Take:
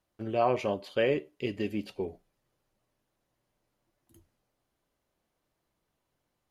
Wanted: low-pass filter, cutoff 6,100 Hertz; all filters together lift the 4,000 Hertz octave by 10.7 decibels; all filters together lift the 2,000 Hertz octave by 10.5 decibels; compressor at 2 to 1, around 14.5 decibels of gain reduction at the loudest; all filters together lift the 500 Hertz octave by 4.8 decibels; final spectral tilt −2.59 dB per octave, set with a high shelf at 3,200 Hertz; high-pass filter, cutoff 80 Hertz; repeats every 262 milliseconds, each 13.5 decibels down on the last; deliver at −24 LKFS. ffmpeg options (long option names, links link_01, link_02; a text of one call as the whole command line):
ffmpeg -i in.wav -af "highpass=80,lowpass=6100,equalizer=frequency=500:width_type=o:gain=5,equalizer=frequency=2000:width_type=o:gain=8,highshelf=frequency=3200:gain=8,equalizer=frequency=4000:width_type=o:gain=6,acompressor=threshold=-44dB:ratio=2,aecho=1:1:262|524:0.211|0.0444,volume=14.5dB" out.wav